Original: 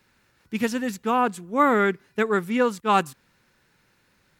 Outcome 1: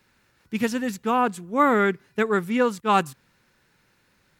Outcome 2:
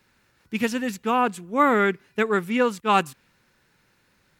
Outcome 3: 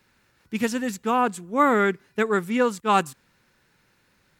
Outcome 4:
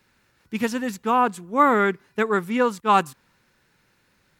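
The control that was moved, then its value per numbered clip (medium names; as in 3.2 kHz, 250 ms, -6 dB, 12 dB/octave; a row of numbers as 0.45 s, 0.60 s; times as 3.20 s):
dynamic bell, frequency: 130 Hz, 2.6 kHz, 7.7 kHz, 1 kHz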